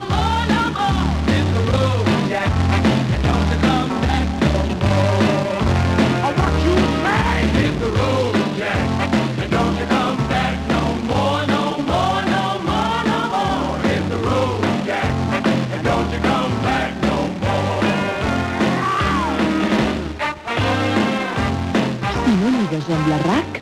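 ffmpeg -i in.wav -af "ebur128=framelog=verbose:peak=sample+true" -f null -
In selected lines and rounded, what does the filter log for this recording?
Integrated loudness:
  I:         -18.5 LUFS
  Threshold: -28.5 LUFS
Loudness range:
  LRA:         2.0 LU
  Threshold: -38.5 LUFS
  LRA low:   -19.3 LUFS
  LRA high:  -17.3 LUFS
Sample peak:
  Peak:       -5.0 dBFS
True peak:
  Peak:       -5.0 dBFS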